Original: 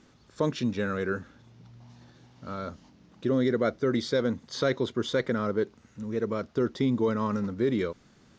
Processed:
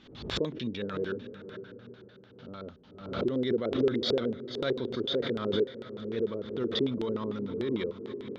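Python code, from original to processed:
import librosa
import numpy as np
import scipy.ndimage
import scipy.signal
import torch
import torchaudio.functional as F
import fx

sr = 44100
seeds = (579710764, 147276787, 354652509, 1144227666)

y = fx.echo_diffused(x, sr, ms=525, feedback_pct=42, wet_db=-11.0)
y = fx.filter_lfo_lowpass(y, sr, shape='square', hz=6.7, low_hz=410.0, high_hz=3500.0, q=3.6)
y = fx.pre_swell(y, sr, db_per_s=79.0)
y = y * 10.0 ** (-8.5 / 20.0)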